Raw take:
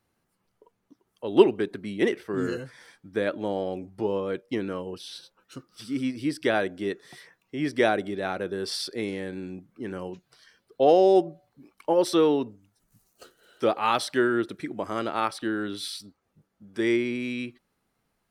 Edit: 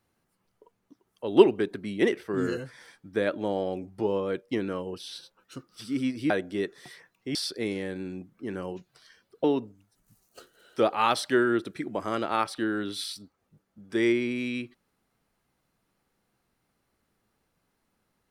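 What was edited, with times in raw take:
6.3–6.57 cut
7.62–8.72 cut
10.81–12.28 cut

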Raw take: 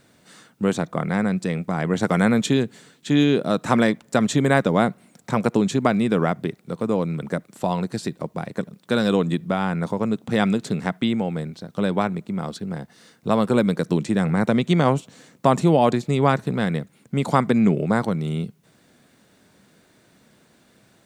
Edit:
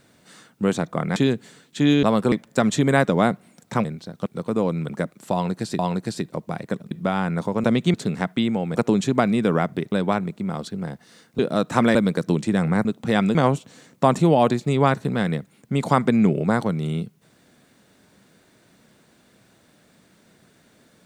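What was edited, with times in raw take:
1.16–2.46 cut
3.33–3.89 swap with 13.28–13.57
5.42–6.59 swap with 11.4–11.81
7.66–8.12 loop, 2 plays
8.78–9.36 cut
10.09–10.59 swap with 14.47–14.77

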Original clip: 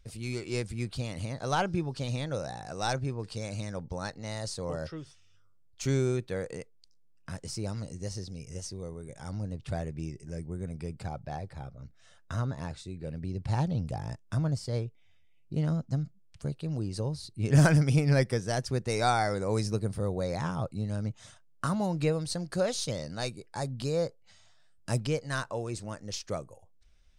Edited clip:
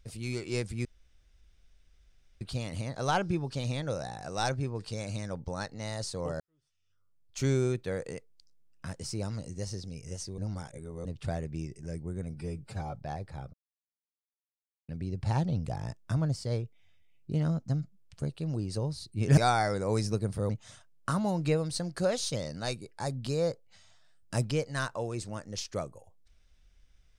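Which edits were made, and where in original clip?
0.85 insert room tone 1.56 s
4.84–5.88 fade in quadratic
8.82–9.49 reverse
10.74–11.17 stretch 1.5×
11.76–13.11 mute
17.6–18.98 cut
20.1–21.05 cut

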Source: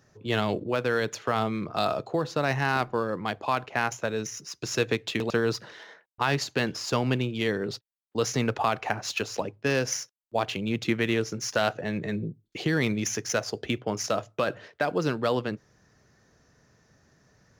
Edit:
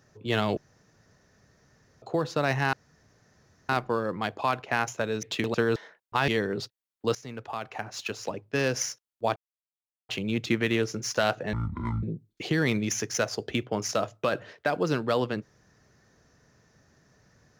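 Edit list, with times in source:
0.57–2.02 room tone
2.73 insert room tone 0.96 s
4.27–4.99 cut
5.52–5.82 cut
6.34–7.39 cut
8.26–9.95 fade in, from -18 dB
10.47 insert silence 0.73 s
11.91–12.18 speed 54%

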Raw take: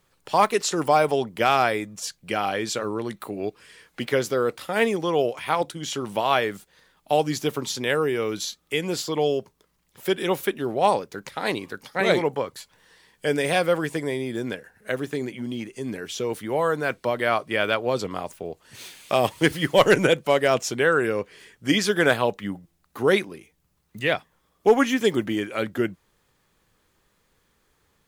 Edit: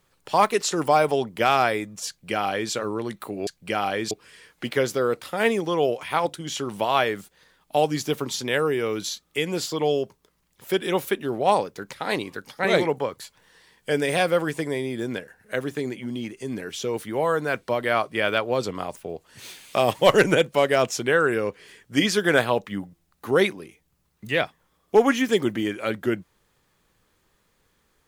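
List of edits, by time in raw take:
2.08–2.72 copy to 3.47
19.35–19.71 cut

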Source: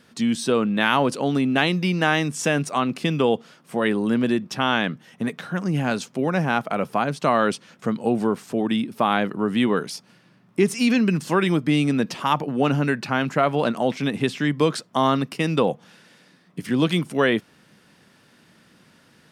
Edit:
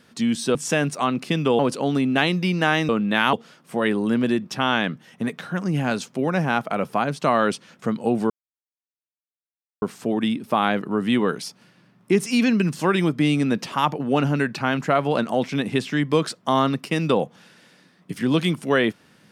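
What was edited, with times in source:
0.55–0.99 swap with 2.29–3.33
8.3 insert silence 1.52 s

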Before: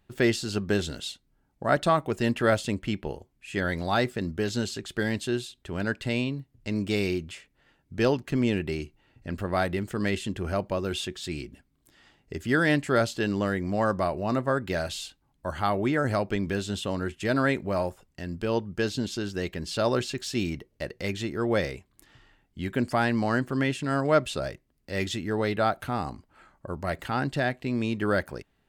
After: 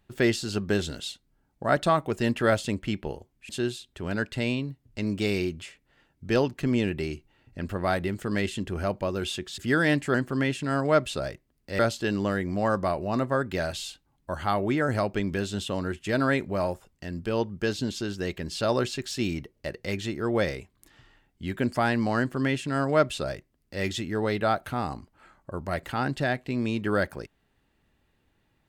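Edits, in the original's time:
3.49–5.18 cut
11.27–12.39 cut
23.34–24.99 copy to 12.95

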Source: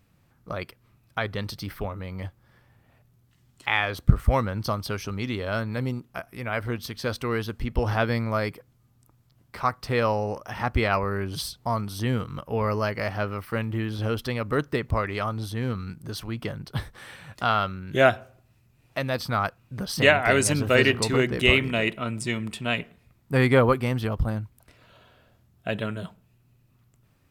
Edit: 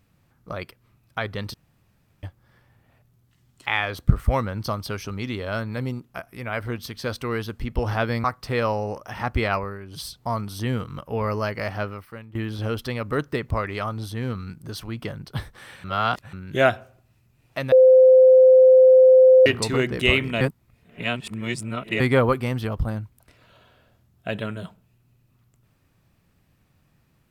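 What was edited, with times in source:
1.54–2.23 room tone
8.24–9.64 cut
10.92–11.54 dip -10 dB, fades 0.27 s
13.22–13.75 fade out quadratic, to -15.5 dB
17.24–17.73 reverse
19.12–20.86 bleep 517 Hz -8.5 dBFS
21.81–23.4 reverse

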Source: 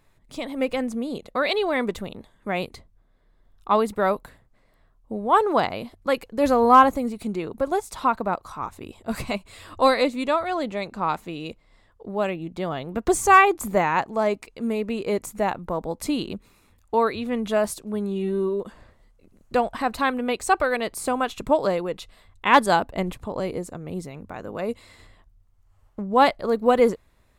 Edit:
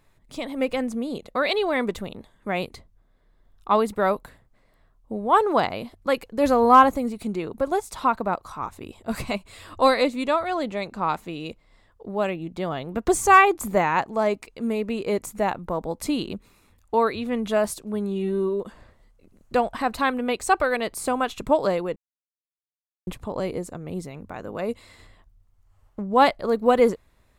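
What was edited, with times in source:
21.96–23.07 mute

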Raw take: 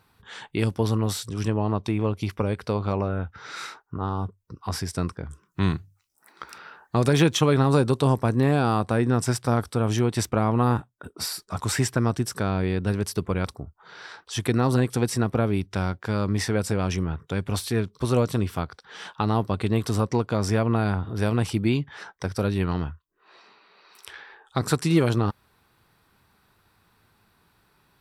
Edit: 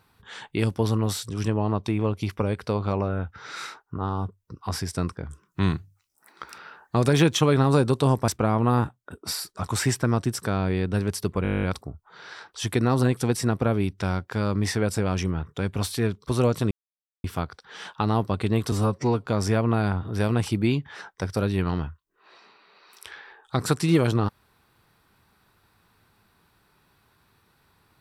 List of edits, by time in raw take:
8.28–10.21 cut
13.36 stutter 0.02 s, 11 plays
18.44 insert silence 0.53 s
19.92–20.28 stretch 1.5×

